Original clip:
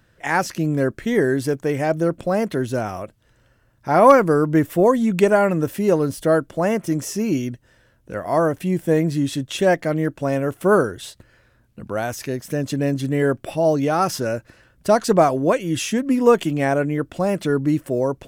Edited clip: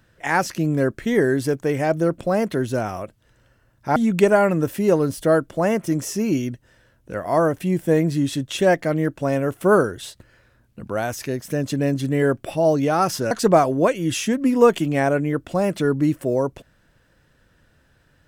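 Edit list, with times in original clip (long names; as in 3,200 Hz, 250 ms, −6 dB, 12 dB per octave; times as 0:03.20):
0:03.96–0:04.96: remove
0:14.31–0:14.96: remove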